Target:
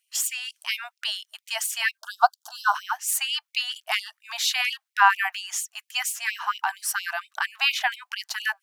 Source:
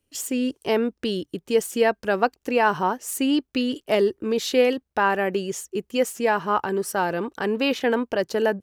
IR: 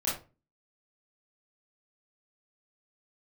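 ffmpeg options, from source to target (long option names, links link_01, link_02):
-filter_complex "[0:a]asplit=3[link_01][link_02][link_03];[link_01]afade=type=out:start_time=1.97:duration=0.02[link_04];[link_02]asuperstop=centerf=2200:order=8:qfactor=1.2,afade=type=in:start_time=1.97:duration=0.02,afade=type=out:start_time=2.74:duration=0.02[link_05];[link_03]afade=type=in:start_time=2.74:duration=0.02[link_06];[link_04][link_05][link_06]amix=inputs=3:normalize=0,afftfilt=real='re*gte(b*sr/1024,620*pow(2200/620,0.5+0.5*sin(2*PI*4.3*pts/sr)))':imag='im*gte(b*sr/1024,620*pow(2200/620,0.5+0.5*sin(2*PI*4.3*pts/sr)))':win_size=1024:overlap=0.75,volume=5.5dB"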